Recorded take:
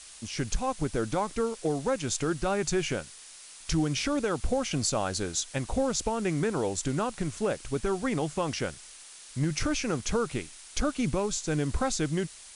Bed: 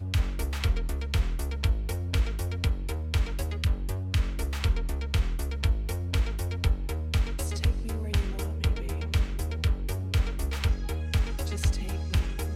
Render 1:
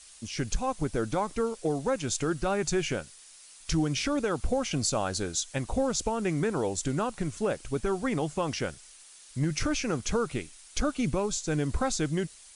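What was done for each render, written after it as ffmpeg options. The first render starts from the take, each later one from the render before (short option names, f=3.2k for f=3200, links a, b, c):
-af "afftdn=nr=6:nf=-49"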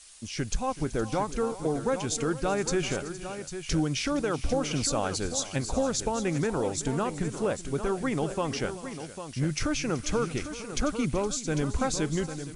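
-af "aecho=1:1:379|466|799:0.141|0.15|0.316"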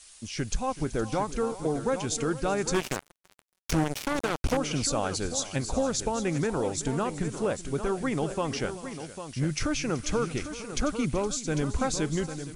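-filter_complex "[0:a]asettb=1/sr,asplit=3[a][b][c];[a]atrim=end=2.744[d];[b]atrim=start=2.74:end=4.57,asetpts=PTS-STARTPTS,afade=t=in:d=0.004:c=qsin,afade=t=out:st=1.826:d=0.004:c=qsin,acrusher=bits=3:mix=0:aa=0.5[e];[c]atrim=start=4.566[f];[d][e]acrossfade=d=0.004:c1=hsin:c2=qsin[g];[g][f]acrossfade=d=0.004:c1=qsin:c2=hsin"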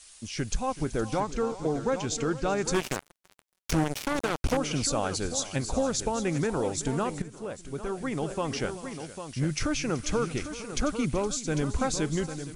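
-filter_complex "[0:a]asettb=1/sr,asplit=3[a][b][c];[a]atrim=end=1.204[d];[b]atrim=start=1.2:end=2.65,asetpts=PTS-STARTPTS,afade=t=in:d=0.004:c=qsin,afade=t=out:st=1.446:d=0.004:c=qsin,lowpass=f=7.7k:w=0.5412,lowpass=f=7.7k:w=1.3066[e];[c]atrim=start=2.646[f];[d][e]acrossfade=d=0.004:c1=hsin:c2=qsin[g];[g][f]acrossfade=d=0.004:c1=qsin:c2=hsin,asplit=2[h][i];[h]atrim=end=7.22,asetpts=PTS-STARTPTS,afade=t=out:st=7.216:d=0.004:c=hsin:silence=0.237137[j];[i]atrim=start=7.22,asetpts=PTS-STARTPTS,afade=t=in:d=1.38:silence=0.237137[k];[j][k]concat=n=2:v=0:a=1"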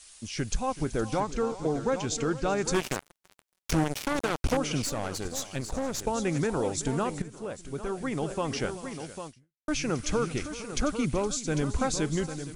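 -filter_complex "[0:a]asettb=1/sr,asplit=3[a][b][c];[a]atrim=end=4.824[d];[b]atrim=start=4.82:end=6.07,asetpts=PTS-STARTPTS,afade=t=in:d=0.004:c=qsin,afade=t=out:st=1.246:d=0.004:c=qsin,aeval=exprs='(tanh(20*val(0)+0.7)-tanh(0.7))/20':c=same[e];[c]atrim=start=6.066[f];[d][e]acrossfade=d=0.004:c1=hsin:c2=qsin[g];[g][f]acrossfade=d=0.004:c1=qsin:c2=hsin,asplit=2[h][i];[h]atrim=end=9.68,asetpts=PTS-STARTPTS,afade=t=out:st=9.27:d=0.41:c=exp[j];[i]atrim=start=9.68,asetpts=PTS-STARTPTS,afade=t=in:d=0.004:c=hsin[k];[j][k]concat=n=2:v=0:a=1"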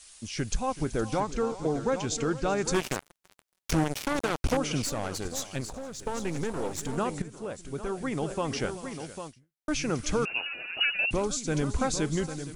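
-filter_complex "[0:a]asettb=1/sr,asplit=3[a][b][c];[a]atrim=end=5.704[d];[b]atrim=start=5.7:end=6.98,asetpts=PTS-STARTPTS,afade=t=in:d=0.004:c=qsin,afade=t=out:st=1.276:d=0.004:c=qsin,aeval=exprs='if(lt(val(0),0),0.251*val(0),val(0))':c=same[e];[c]atrim=start=6.976[f];[d][e]acrossfade=d=0.004:c1=hsin:c2=qsin[g];[g][f]acrossfade=d=0.004:c1=qsin:c2=hsin,asettb=1/sr,asplit=3[h][i][j];[h]atrim=end=10.254[k];[i]atrim=start=10.25:end=11.11,asetpts=PTS-STARTPTS,afade=t=in:d=0.004:c=qsin,afade=t=out:st=0.856:d=0.004:c=qsin,lowpass=f=2.5k:t=q:w=0.5098,lowpass=f=2.5k:t=q:w=0.6013,lowpass=f=2.5k:t=q:w=0.9,lowpass=f=2.5k:t=q:w=2.563,afreqshift=-2900[l];[j]atrim=start=11.106[m];[k][l]acrossfade=d=0.004:c1=hsin:c2=qsin[n];[n][m]acrossfade=d=0.004:c1=qsin:c2=hsin"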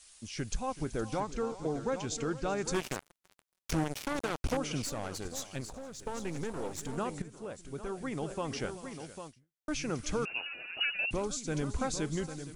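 -af "volume=-5.5dB"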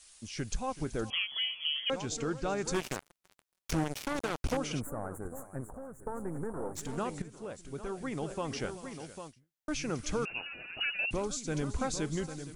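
-filter_complex "[0:a]asettb=1/sr,asplit=3[a][b][c];[a]atrim=end=1.104[d];[b]atrim=start=1.1:end=1.9,asetpts=PTS-STARTPTS,afade=t=in:d=0.004:c=qsin,afade=t=out:st=0.796:d=0.004:c=qsin,lowpass=f=2.9k:t=q:w=0.5098,lowpass=f=2.9k:t=q:w=0.6013,lowpass=f=2.9k:t=q:w=0.9,lowpass=f=2.9k:t=q:w=2.563,afreqshift=-3400[e];[c]atrim=start=1.896[f];[d][e]acrossfade=d=0.004:c1=hsin:c2=qsin[g];[g][f]acrossfade=d=0.004:c1=qsin:c2=hsin,asplit=3[h][i][j];[h]afade=t=out:st=4.79:d=0.02[k];[i]asuperstop=centerf=3900:order=8:qfactor=0.53,afade=t=in:st=4.79:d=0.02,afade=t=out:st=6.75:d=0.02[l];[j]afade=t=in:st=6.75:d=0.02[m];[k][l][m]amix=inputs=3:normalize=0,asettb=1/sr,asplit=3[n][o][p];[n]atrim=end=10.304[q];[o]atrim=start=10.3:end=10.87,asetpts=PTS-STARTPTS,afade=t=in:d=0.004:c=qsin,afade=t=out:st=0.566:d=0.004:c=qsin,bass=f=250:g=10,treble=f=4k:g=-12[r];[p]atrim=start=10.866[s];[q][r]acrossfade=d=0.004:c1=hsin:c2=qsin[t];[t][s]acrossfade=d=0.004:c1=qsin:c2=hsin"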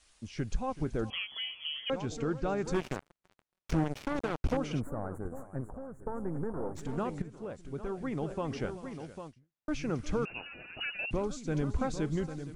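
-af "lowpass=f=2.1k:p=1,lowshelf=f=360:g=3.5"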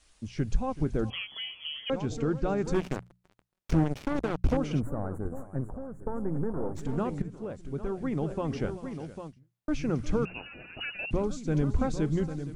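-af "lowshelf=f=430:g=6.5,bandreject=f=60:t=h:w=6,bandreject=f=120:t=h:w=6,bandreject=f=180:t=h:w=6"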